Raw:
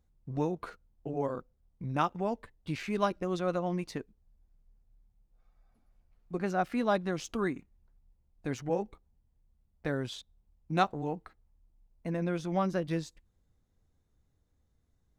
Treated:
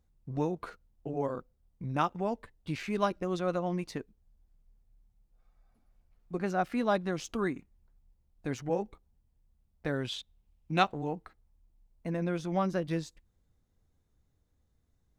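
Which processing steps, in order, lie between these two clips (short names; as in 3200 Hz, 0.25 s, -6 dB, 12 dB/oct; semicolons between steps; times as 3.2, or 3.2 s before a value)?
9.94–10.98 bell 2800 Hz +7.5 dB 1 oct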